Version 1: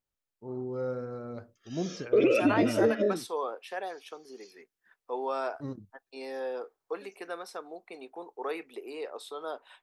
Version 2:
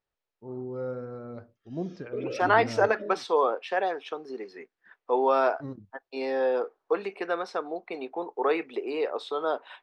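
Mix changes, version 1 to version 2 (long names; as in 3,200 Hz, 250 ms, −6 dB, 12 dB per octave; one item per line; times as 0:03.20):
second voice +10.0 dB
background −11.0 dB
master: add high-frequency loss of the air 160 metres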